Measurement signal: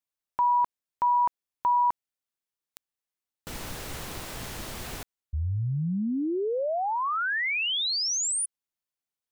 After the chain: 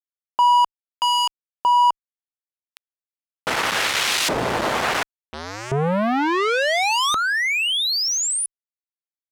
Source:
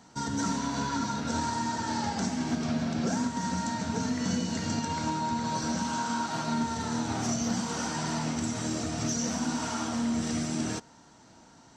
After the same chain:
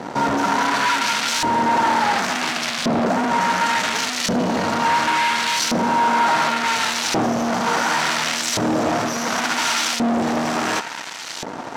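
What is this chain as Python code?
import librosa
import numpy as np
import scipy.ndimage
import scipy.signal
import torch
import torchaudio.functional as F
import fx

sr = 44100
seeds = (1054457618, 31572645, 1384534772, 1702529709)

y = fx.fuzz(x, sr, gain_db=53.0, gate_db=-54.0)
y = fx.filter_lfo_bandpass(y, sr, shape='saw_up', hz=0.7, low_hz=460.0, high_hz=4000.0, q=0.8)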